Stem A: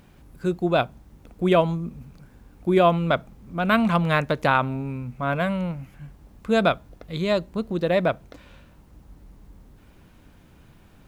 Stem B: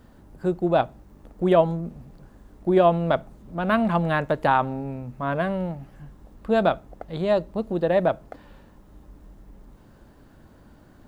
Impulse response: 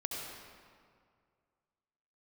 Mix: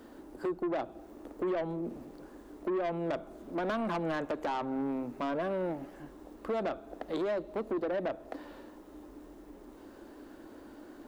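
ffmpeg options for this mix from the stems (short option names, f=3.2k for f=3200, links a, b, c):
-filter_complex "[0:a]volume=-18dB[a];[1:a]lowshelf=f=210:t=q:w=3:g=-13,acrossover=split=150[b][c];[c]acompressor=threshold=-27dB:ratio=6[d];[b][d]amix=inputs=2:normalize=0,volume=1dB,asplit=3[e][f][g];[f]volume=-24dB[h];[g]apad=whole_len=488514[i];[a][i]sidechaincompress=threshold=-31dB:ratio=8:attack=16:release=120[j];[2:a]atrim=start_sample=2205[k];[h][k]afir=irnorm=-1:irlink=0[l];[j][e][l]amix=inputs=3:normalize=0,asoftclip=type=tanh:threshold=-28dB"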